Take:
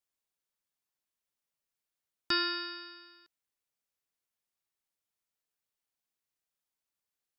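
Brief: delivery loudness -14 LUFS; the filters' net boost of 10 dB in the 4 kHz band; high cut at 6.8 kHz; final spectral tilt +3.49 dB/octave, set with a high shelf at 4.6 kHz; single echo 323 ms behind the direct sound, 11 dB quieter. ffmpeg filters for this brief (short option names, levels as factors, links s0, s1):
-af "lowpass=6800,equalizer=f=4000:t=o:g=9,highshelf=f=4600:g=6.5,aecho=1:1:323:0.282,volume=3.16"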